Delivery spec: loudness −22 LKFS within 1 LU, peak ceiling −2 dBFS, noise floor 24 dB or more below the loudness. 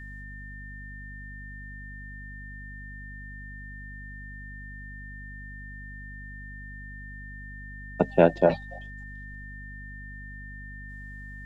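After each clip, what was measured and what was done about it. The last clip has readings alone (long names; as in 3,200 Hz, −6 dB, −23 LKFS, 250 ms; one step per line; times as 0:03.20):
mains hum 50 Hz; hum harmonics up to 250 Hz; level of the hum −40 dBFS; interfering tone 1,800 Hz; level of the tone −43 dBFS; integrated loudness −33.5 LKFS; sample peak −3.0 dBFS; target loudness −22.0 LKFS
→ hum removal 50 Hz, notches 5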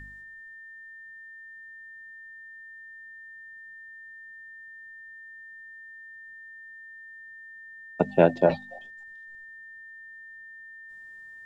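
mains hum none found; interfering tone 1,800 Hz; level of the tone −43 dBFS
→ notch filter 1,800 Hz, Q 30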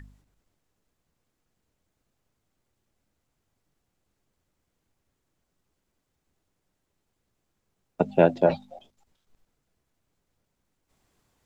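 interfering tone none found; integrated loudness −23.0 LKFS; sample peak −3.5 dBFS; target loudness −22.0 LKFS
→ level +1 dB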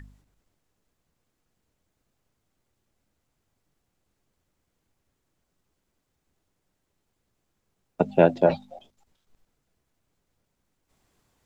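integrated loudness −22.0 LKFS; sample peak −2.5 dBFS; background noise floor −78 dBFS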